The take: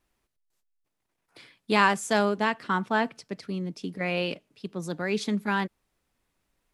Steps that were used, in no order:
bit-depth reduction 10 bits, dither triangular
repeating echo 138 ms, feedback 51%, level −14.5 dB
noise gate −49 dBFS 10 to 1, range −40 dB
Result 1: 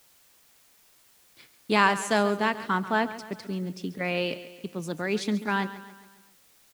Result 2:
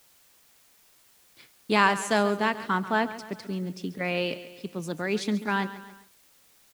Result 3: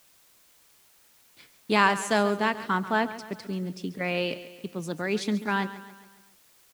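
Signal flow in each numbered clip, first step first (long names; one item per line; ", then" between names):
noise gate, then repeating echo, then bit-depth reduction
repeating echo, then noise gate, then bit-depth reduction
noise gate, then bit-depth reduction, then repeating echo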